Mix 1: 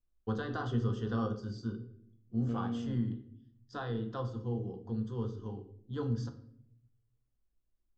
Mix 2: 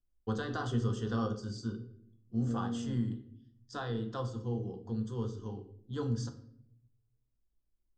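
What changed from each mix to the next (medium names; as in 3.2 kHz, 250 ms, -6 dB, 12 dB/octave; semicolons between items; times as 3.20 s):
first voice: remove distance through air 140 m; second voice: add boxcar filter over 28 samples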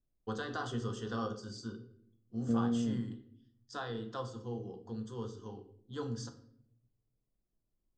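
first voice: add bass shelf 250 Hz -9.5 dB; second voice +6.0 dB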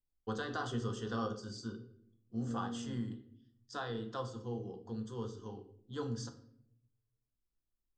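second voice -11.0 dB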